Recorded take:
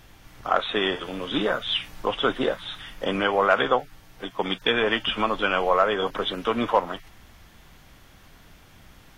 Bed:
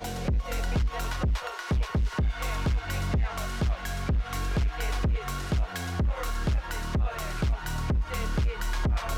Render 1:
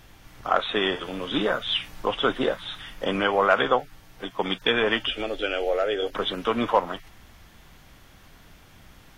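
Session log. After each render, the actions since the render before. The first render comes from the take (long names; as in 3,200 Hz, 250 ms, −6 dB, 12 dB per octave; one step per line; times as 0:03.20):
0:05.07–0:06.13: phaser with its sweep stopped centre 430 Hz, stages 4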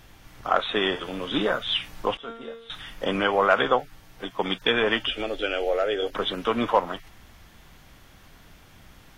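0:02.17–0:02.70: tuned comb filter 230 Hz, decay 0.64 s, mix 90%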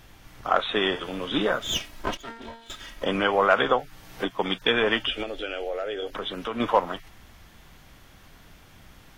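0:01.60–0:03.03: lower of the sound and its delayed copy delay 3.1 ms
0:03.69–0:04.28: multiband upward and downward compressor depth 70%
0:05.23–0:06.60: downward compressor 2 to 1, threshold −31 dBFS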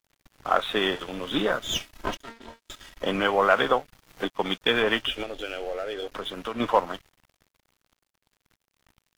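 dead-zone distortion −44 dBFS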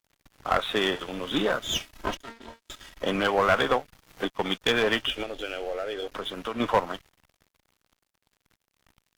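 asymmetric clip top −18.5 dBFS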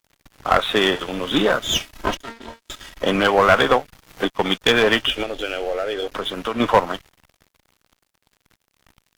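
level +7.5 dB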